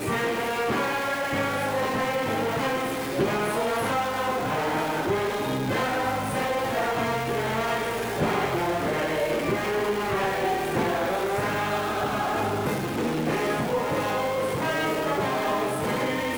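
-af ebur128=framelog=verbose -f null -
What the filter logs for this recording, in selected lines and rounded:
Integrated loudness:
  I:         -25.9 LUFS
  Threshold: -35.9 LUFS
Loudness range:
  LRA:         0.5 LU
  Threshold: -45.9 LUFS
  LRA low:   -26.2 LUFS
  LRA high:  -25.7 LUFS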